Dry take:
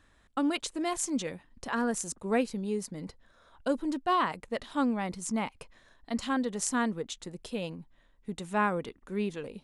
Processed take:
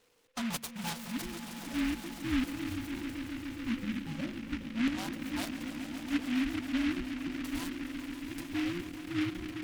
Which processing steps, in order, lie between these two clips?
frequency inversion band by band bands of 500 Hz
mains-hum notches 50/100/150/200 Hz
auto-filter low-pass square 0.41 Hz 320–3,700 Hz
on a send: echo that builds up and dies away 138 ms, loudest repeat 5, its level −12.5 dB
on the sum: short delay modulated by noise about 2,000 Hz, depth 0.17 ms
level −7 dB

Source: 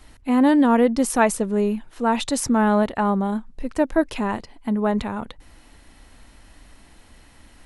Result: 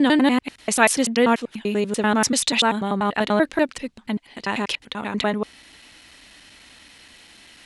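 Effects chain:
slices reordered back to front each 97 ms, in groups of 7
meter weighting curve D

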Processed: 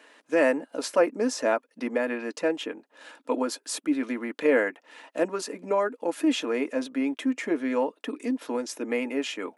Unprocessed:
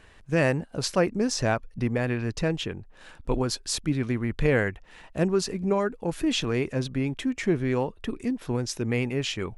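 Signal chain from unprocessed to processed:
elliptic high-pass filter 270 Hz, stop band 70 dB
notch comb filter 380 Hz
dynamic equaliser 4,600 Hz, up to −8 dB, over −48 dBFS, Q 0.83
level +4 dB

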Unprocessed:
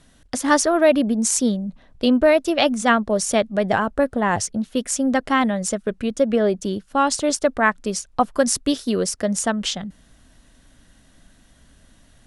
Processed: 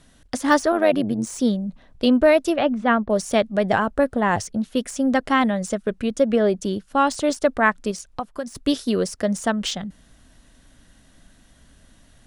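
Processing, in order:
de-essing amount 50%
0:00.72–0:01.27: amplitude modulation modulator 98 Hz, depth 50%
0:02.56–0:03.10: high-frequency loss of the air 390 metres
0:07.91–0:08.55: downward compressor 2.5 to 1, threshold −31 dBFS, peak gain reduction 12.5 dB

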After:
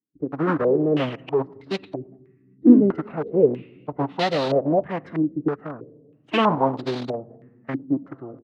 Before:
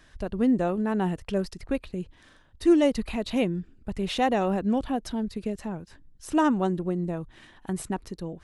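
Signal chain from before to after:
adaptive Wiener filter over 9 samples
noise gate −45 dBFS, range −32 dB
parametric band 400 Hz +7.5 dB 0.28 octaves
echo with shifted repeats 112 ms, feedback 48%, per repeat −130 Hz, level −22 dB
convolution reverb RT60 1.5 s, pre-delay 9 ms, DRR 13.5 dB
dynamic equaliser 170 Hz, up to −3 dB, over −35 dBFS, Q 1.1
tape wow and flutter 19 cents
in parallel at −7 dB: bit reduction 4 bits
on the sum: phase-vocoder pitch shift with formants kept −6 semitones
high-pass filter 110 Hz 24 dB per octave
low-pass on a step sequencer 3.1 Hz 310–4,100 Hz
level −2.5 dB

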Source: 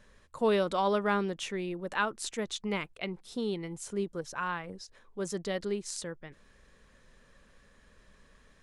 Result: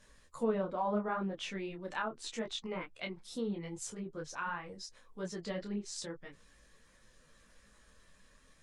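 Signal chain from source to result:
spectral magnitudes quantised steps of 15 dB
treble cut that deepens with the level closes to 1,100 Hz, closed at −27 dBFS
high-shelf EQ 4,800 Hz +10.5 dB
notch filter 400 Hz, Q 12
micro pitch shift up and down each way 27 cents

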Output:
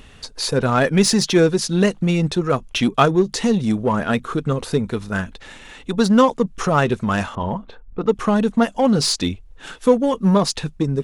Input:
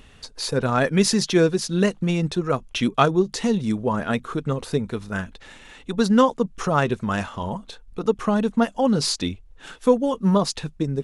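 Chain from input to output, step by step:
0:07.35–0:08.18: low-pass that shuts in the quiet parts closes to 1,100 Hz, open at −16 dBFS
in parallel at −7 dB: hard clipping −21.5 dBFS, distortion −6 dB
on the sum: level +1.5 dB

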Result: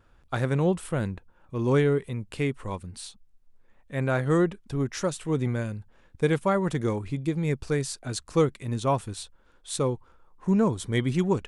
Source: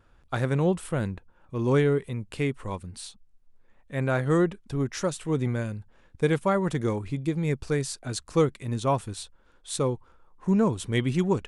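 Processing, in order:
0:10.67–0:11.12: notch filter 2,700 Hz, Q 5.2

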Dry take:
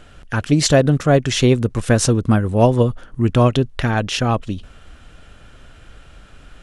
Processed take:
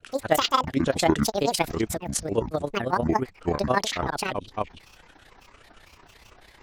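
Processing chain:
bass and treble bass −12 dB, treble 0 dB
in parallel at −2 dB: downward compressor, threshold −28 dBFS, peak gain reduction 17.5 dB
on the sum: granular cloud, grains 18 per second, spray 438 ms, pitch spread up and down by 12 semitones
amplitude modulation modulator 31 Hz, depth 45%
level −3.5 dB

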